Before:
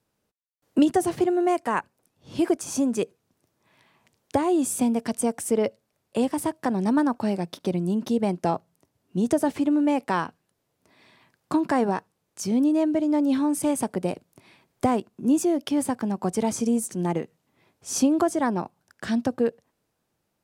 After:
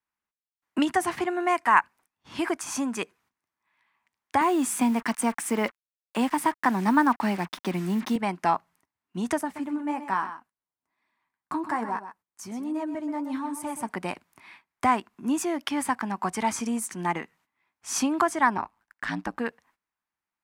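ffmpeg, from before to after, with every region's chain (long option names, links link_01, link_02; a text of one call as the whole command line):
ffmpeg -i in.wav -filter_complex "[0:a]asettb=1/sr,asplit=3[link_01][link_02][link_03];[link_01]atrim=end=4.414[link_04];[link_02]atrim=start=4.41:end=8.16,asetpts=PTS-STARTPTS,afade=type=in:duration=0.004:curve=qsin,afade=type=out:start_time=3.746:duration=0.004:curve=qsin,highpass=frequency=160:width=0.5412,highpass=frequency=160:width=1.3066,lowshelf=frequency=320:gain=7.5,acrusher=bits=6:mix=0:aa=0.5[link_05];[link_03]atrim=start=8.156[link_06];[link_04][link_05]acrossfade=duration=0.004:curve1=hsin:curve2=qsin[link_07];[link_07][link_06]acrossfade=duration=0.004:curve1=qsin:curve2=hsin,asettb=1/sr,asplit=3[link_08][link_09][link_10];[link_08]atrim=end=9.414[link_11];[link_09]atrim=start=9.41:end=13.89,asetpts=PTS-STARTPTS,afade=type=in:duration=0.004:curve=qsin,afade=type=out:start_time=4.476:duration=0.004:curve=qsin,flanger=delay=2.8:depth=9:regen=44:speed=1.2:shape=triangular,equalizer=frequency=2800:width_type=o:width=2.4:gain=-9,aecho=1:1:127:0.282,atrim=end_sample=197568[link_12];[link_10]atrim=start=13.886[link_13];[link_11][link_12]acrossfade=duration=0.004:curve1=hsin:curve2=qsin[link_14];[link_14][link_13]acrossfade=duration=0.004:curve1=qsin:curve2=hsin,asettb=1/sr,asplit=3[link_15][link_16][link_17];[link_15]atrim=end=18.574[link_18];[link_16]atrim=start=18.57:end=19.37,asetpts=PTS-STARTPTS,afade=type=in:duration=0.004:curve=qsin,afade=type=out:start_time=0.796:duration=0.004:curve=qsin,aeval=exprs='val(0)*sin(2*PI*55*n/s)':channel_layout=same,highshelf=frequency=3900:gain=-3.5[link_19];[link_17]atrim=start=19.366[link_20];[link_18][link_19]acrossfade=duration=0.004:curve1=hsin:curve2=qsin[link_21];[link_21][link_20]acrossfade=duration=0.004:curve1=qsin:curve2=hsin,agate=range=-16dB:threshold=-56dB:ratio=16:detection=peak,equalizer=frequency=125:width_type=o:width=1:gain=-10,equalizer=frequency=500:width_type=o:width=1:gain=-11,equalizer=frequency=1000:width_type=o:width=1:gain=10,equalizer=frequency=2000:width_type=o:width=1:gain=10,volume=-1.5dB" out.wav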